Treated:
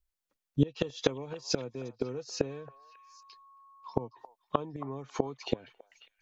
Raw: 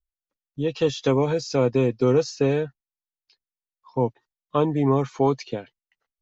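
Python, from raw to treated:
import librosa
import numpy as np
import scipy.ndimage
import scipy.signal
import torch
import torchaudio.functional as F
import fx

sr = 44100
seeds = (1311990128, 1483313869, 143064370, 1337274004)

y = fx.gate_flip(x, sr, shuts_db=-16.0, range_db=-24)
y = fx.echo_stepped(y, sr, ms=272, hz=930.0, octaves=1.4, feedback_pct=70, wet_db=-11.5)
y = fx.dmg_tone(y, sr, hz=1100.0, level_db=-59.0, at=(2.49, 4.06), fade=0.02)
y = y * librosa.db_to_amplitude(4.5)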